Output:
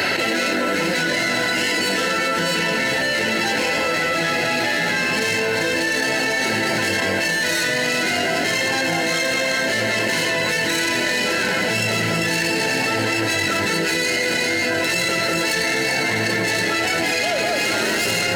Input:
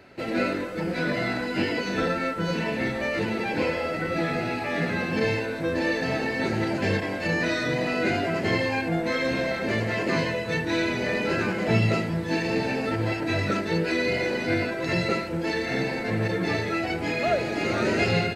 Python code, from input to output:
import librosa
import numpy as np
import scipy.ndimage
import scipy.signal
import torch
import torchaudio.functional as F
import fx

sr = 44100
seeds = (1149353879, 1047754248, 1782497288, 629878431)

p1 = fx.tracing_dist(x, sr, depth_ms=0.14)
p2 = fx.tilt_shelf(p1, sr, db=-8.0, hz=1100.0)
p3 = fx.notch_comb(p2, sr, f0_hz=1200.0)
p4 = p3 + fx.echo_alternate(p3, sr, ms=197, hz=1400.0, feedback_pct=53, wet_db=-3, dry=0)
y = fx.env_flatten(p4, sr, amount_pct=100)